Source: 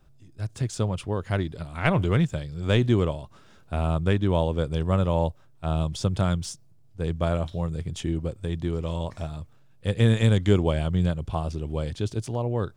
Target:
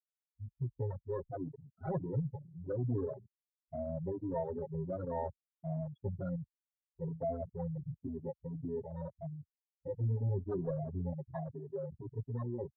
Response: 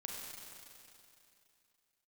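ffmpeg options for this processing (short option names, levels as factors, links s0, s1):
-filter_complex "[0:a]lowshelf=f=140:g=-9.5,agate=range=0.0224:threshold=0.00355:ratio=3:detection=peak,equalizer=f=2500:t=o:w=0.92:g=-6.5,bandreject=f=1200:w=23,aecho=1:1:7.5:0.91,asplit=2[s0][s1];[1:a]atrim=start_sample=2205,lowpass=1600[s2];[s1][s2]afir=irnorm=-1:irlink=0,volume=0.178[s3];[s0][s3]amix=inputs=2:normalize=0,asoftclip=type=tanh:threshold=0.0841,afftfilt=real='re*gte(hypot(re,im),0.112)':imag='im*gte(hypot(re,im),0.112)':win_size=1024:overlap=0.75,afwtdn=0.0126,asplit=2[s4][s5];[s5]adelay=3.8,afreqshift=-1.4[s6];[s4][s6]amix=inputs=2:normalize=1,volume=0.531"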